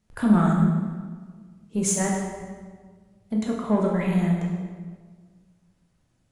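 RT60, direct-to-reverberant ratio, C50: 1.6 s, -2.0 dB, 2.0 dB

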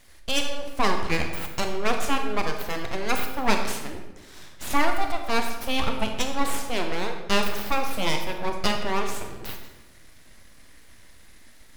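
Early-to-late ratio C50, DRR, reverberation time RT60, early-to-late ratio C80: 6.0 dB, 4.0 dB, 1.1 s, 8.0 dB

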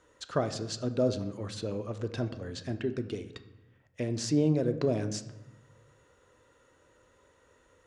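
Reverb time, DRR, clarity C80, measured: 1.0 s, 9.0 dB, 14.5 dB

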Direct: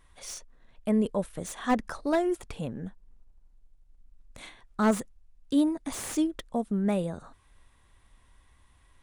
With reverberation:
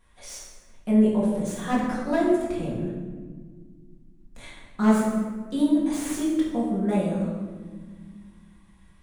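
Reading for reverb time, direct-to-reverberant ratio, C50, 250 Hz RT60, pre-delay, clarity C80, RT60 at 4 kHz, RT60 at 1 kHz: 1.6 s, -7.0 dB, 1.0 dB, 2.9 s, 4 ms, 3.5 dB, 0.90 s, 1.3 s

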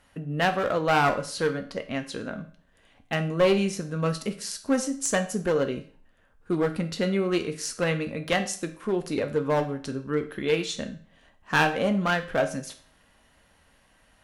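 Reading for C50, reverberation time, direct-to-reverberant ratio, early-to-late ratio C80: 12.5 dB, 0.45 s, 6.0 dB, 16.5 dB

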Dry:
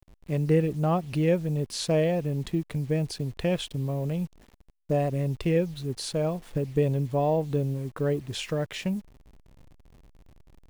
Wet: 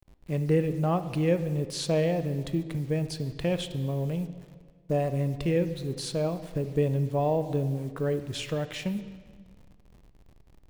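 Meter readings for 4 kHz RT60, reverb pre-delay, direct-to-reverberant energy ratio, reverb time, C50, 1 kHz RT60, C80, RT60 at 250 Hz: 1.4 s, 20 ms, 10.5 dB, 1.6 s, 12.0 dB, 1.6 s, 13.0 dB, 1.7 s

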